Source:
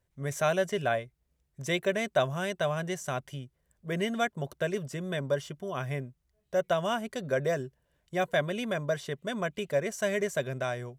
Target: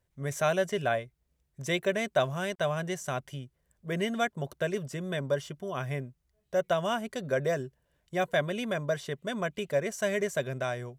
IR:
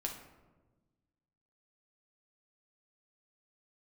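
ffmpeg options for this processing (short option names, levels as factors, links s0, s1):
-filter_complex "[0:a]asettb=1/sr,asplit=3[s0][s1][s2];[s0]atrim=end=2.154[s3];[s1]atrim=start=2.15:end=2.59,asetpts=PTS-STARTPTS,afade=t=in:d=0.004:c=qsin,afade=t=out:st=0.436:d=0.004:c=qsin,aeval=exprs='sgn(val(0))*max(abs(val(0))-0.00133,0)':c=same[s4];[s2]atrim=start=2.586[s5];[s3][s4]acrossfade=d=0.004:c1=hsin:c2=qsin[s6];[s6][s5]acrossfade=d=0.004:c1=qsin:c2=hsin"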